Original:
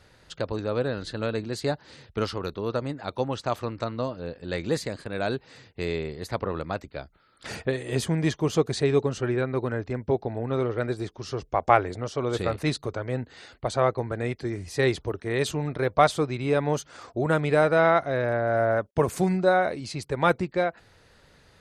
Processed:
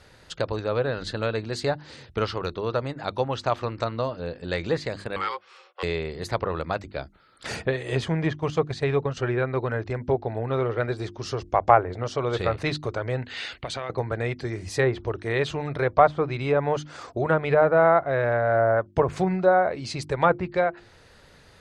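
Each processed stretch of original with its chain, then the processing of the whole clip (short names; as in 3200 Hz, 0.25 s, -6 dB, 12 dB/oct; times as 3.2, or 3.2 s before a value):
5.16–5.83 ring modulator 660 Hz + rippled Chebyshev high-pass 350 Hz, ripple 9 dB + bell 3000 Hz +5 dB 1.9 oct
8.33–9.17 gate -29 dBFS, range -9 dB + bell 350 Hz -6 dB 0.59 oct
13.22–13.9 bell 2700 Hz +13.5 dB 1.7 oct + compressor 8:1, threshold -32 dBFS + mismatched tape noise reduction encoder only
whole clip: notches 50/100/150/200/250/300/350 Hz; treble ducked by the level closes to 1300 Hz, closed at -18 dBFS; dynamic EQ 250 Hz, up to -7 dB, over -38 dBFS, Q 1.1; gain +4 dB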